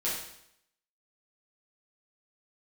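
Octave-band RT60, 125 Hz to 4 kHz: 0.75, 0.75, 0.75, 0.75, 0.75, 0.75 s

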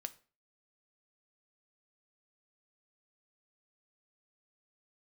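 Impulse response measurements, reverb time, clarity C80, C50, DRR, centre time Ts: 0.40 s, 23.5 dB, 18.5 dB, 10.0 dB, 3 ms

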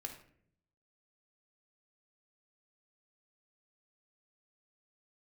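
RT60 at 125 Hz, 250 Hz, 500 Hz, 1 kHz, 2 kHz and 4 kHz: 1.0, 0.95, 0.75, 0.50, 0.55, 0.40 s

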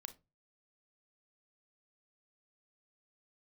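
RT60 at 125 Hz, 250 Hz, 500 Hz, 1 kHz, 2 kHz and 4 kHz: 0.45, 0.35, 0.30, 0.25, 0.20, 0.15 s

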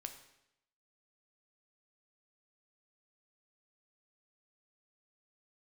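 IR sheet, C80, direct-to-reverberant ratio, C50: 12.0 dB, 6.0 dB, 9.5 dB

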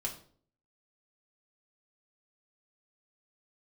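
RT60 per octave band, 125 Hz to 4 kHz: 0.65, 0.65, 0.55, 0.45, 0.40, 0.40 s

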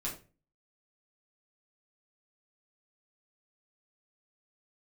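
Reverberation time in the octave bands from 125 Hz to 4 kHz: 0.50, 0.45, 0.40, 0.30, 0.30, 0.25 s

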